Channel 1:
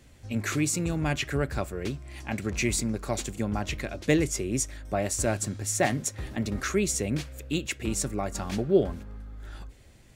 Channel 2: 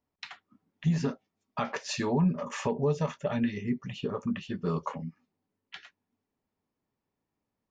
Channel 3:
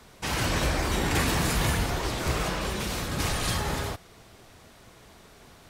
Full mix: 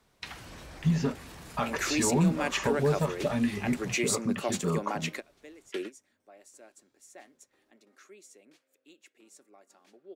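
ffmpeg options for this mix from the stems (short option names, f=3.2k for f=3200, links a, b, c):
-filter_complex "[0:a]highpass=f=290:w=0.5412,highpass=f=290:w=1.3066,adelay=1350,volume=-0.5dB[a];[1:a]volume=1dB,asplit=2[b][c];[2:a]alimiter=limit=-22.5dB:level=0:latency=1:release=19,volume=-16dB[d];[c]apad=whole_len=507329[e];[a][e]sidechaingate=range=-25dB:threshold=-48dB:ratio=16:detection=peak[f];[f][b][d]amix=inputs=3:normalize=0"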